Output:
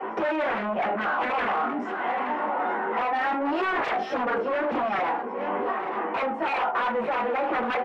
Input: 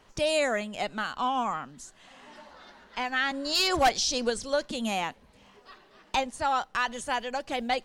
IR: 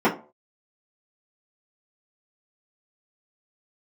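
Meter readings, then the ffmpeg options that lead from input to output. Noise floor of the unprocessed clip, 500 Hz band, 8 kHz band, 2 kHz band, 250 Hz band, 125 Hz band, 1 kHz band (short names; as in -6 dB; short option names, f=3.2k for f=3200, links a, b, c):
-59 dBFS, +3.5 dB, under -25 dB, +3.0 dB, +4.0 dB, n/a, +5.0 dB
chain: -filter_complex "[1:a]atrim=start_sample=2205,afade=t=out:st=0.19:d=0.01,atrim=end_sample=8820[a];[0:a][a]afir=irnorm=-1:irlink=0,asplit=2[b][c];[c]acompressor=threshold=-17dB:ratio=6,volume=0dB[d];[b][d]amix=inputs=2:normalize=0,flanger=delay=18:depth=2.8:speed=0.3,aeval=exprs='0.376*(abs(mod(val(0)/0.376+3,4)-2)-1)':c=same,lowshelf=f=410:g=8,acrossover=split=180[e][f];[f]acompressor=threshold=-14dB:ratio=6[g];[e][g]amix=inputs=2:normalize=0,asplit=2[h][i];[i]highpass=f=720:p=1,volume=23dB,asoftclip=type=tanh:threshold=-3dB[j];[h][j]amix=inputs=2:normalize=0,lowpass=f=2k:p=1,volume=-6dB,acrossover=split=320 2700:gain=0.126 1 0.0891[k][l][m];[k][l][m]amix=inputs=3:normalize=0,aecho=1:1:872:0.237,alimiter=limit=-10.5dB:level=0:latency=1:release=459,volume=-7.5dB"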